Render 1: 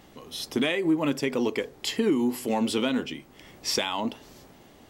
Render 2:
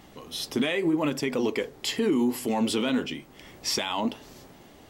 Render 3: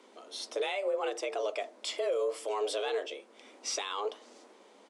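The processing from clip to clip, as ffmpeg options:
-af "alimiter=limit=0.112:level=0:latency=1:release=16,flanger=delay=0.9:depth=6.9:regen=-73:speed=0.8:shape=sinusoidal,volume=2"
-af "aresample=22050,aresample=44100,afreqshift=200,volume=0.447"

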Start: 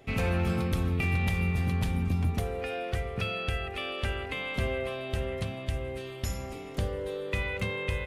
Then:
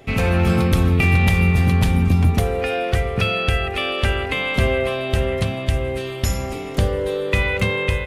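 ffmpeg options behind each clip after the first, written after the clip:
-af "dynaudnorm=f=280:g=3:m=1.41,volume=2.82"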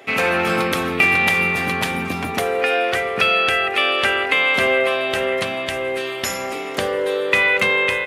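-af "highpass=340,equalizer=f=1700:w=0.82:g=5.5,volume=1.33"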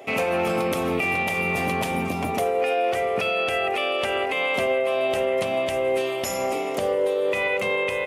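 -af "equalizer=f=630:t=o:w=0.67:g=6,equalizer=f=1600:t=o:w=0.67:g=-10,equalizer=f=4000:t=o:w=0.67:g=-6,alimiter=limit=0.188:level=0:latency=1:release=181"

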